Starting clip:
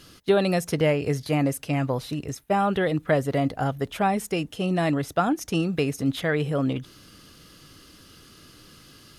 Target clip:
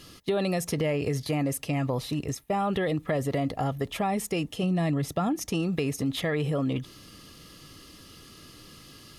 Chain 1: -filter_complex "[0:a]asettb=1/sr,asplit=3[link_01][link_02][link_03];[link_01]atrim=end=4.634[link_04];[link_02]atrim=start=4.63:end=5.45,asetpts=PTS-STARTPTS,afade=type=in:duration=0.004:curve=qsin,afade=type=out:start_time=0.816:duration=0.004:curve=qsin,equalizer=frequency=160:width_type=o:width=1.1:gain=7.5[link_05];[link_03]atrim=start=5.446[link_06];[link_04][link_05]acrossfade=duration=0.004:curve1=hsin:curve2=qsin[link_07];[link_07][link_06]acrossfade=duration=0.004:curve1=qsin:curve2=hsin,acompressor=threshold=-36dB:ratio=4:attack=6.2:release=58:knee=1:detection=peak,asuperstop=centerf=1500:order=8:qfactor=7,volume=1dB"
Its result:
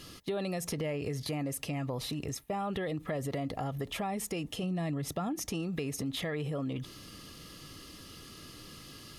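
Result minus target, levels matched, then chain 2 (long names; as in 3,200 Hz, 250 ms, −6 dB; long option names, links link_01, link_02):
downward compressor: peak gain reduction +7.5 dB
-filter_complex "[0:a]asettb=1/sr,asplit=3[link_01][link_02][link_03];[link_01]atrim=end=4.634[link_04];[link_02]atrim=start=4.63:end=5.45,asetpts=PTS-STARTPTS,afade=type=in:duration=0.004:curve=qsin,afade=type=out:start_time=0.816:duration=0.004:curve=qsin,equalizer=frequency=160:width_type=o:width=1.1:gain=7.5[link_05];[link_03]atrim=start=5.446[link_06];[link_04][link_05]acrossfade=duration=0.004:curve1=hsin:curve2=qsin[link_07];[link_07][link_06]acrossfade=duration=0.004:curve1=qsin:curve2=hsin,acompressor=threshold=-26dB:ratio=4:attack=6.2:release=58:knee=1:detection=peak,asuperstop=centerf=1500:order=8:qfactor=7,volume=1dB"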